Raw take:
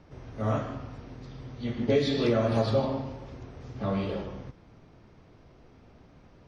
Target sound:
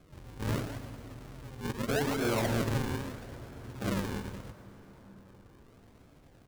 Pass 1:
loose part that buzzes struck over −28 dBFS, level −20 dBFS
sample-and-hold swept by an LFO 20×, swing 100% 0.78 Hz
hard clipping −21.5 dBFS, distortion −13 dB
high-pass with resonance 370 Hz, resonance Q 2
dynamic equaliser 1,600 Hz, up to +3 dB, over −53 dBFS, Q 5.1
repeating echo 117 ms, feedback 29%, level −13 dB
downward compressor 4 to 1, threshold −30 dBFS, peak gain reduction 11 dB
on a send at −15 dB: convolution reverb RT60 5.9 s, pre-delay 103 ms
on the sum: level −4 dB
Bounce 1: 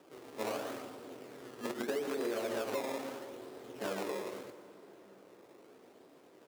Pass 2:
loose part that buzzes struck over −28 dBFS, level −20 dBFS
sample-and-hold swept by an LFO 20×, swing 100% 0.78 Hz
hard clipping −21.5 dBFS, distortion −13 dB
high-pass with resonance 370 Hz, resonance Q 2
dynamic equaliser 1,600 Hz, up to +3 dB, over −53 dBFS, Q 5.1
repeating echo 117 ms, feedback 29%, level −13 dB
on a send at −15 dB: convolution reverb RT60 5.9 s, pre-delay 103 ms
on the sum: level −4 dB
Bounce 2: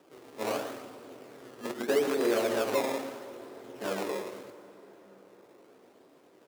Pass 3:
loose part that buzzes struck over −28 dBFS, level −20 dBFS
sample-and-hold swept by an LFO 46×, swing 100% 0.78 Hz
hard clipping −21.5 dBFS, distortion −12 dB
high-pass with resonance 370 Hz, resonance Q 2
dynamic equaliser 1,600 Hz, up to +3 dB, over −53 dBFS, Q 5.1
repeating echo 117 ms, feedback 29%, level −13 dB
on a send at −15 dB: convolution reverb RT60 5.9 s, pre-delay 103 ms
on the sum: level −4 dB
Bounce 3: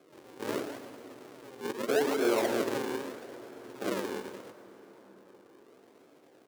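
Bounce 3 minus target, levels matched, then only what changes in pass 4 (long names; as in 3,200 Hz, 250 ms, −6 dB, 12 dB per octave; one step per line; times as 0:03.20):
500 Hz band +3.5 dB
remove: high-pass with resonance 370 Hz, resonance Q 2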